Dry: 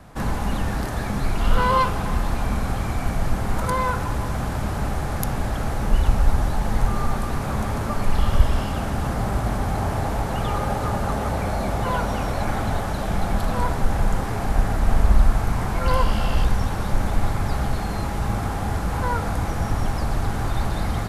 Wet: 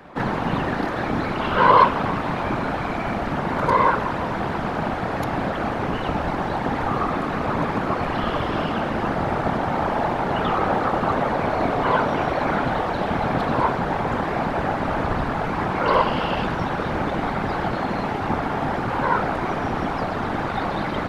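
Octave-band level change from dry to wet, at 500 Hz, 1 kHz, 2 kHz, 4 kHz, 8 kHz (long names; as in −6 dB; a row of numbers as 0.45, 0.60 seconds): +5.5 dB, +5.5 dB, +5.5 dB, +1.5 dB, below −10 dB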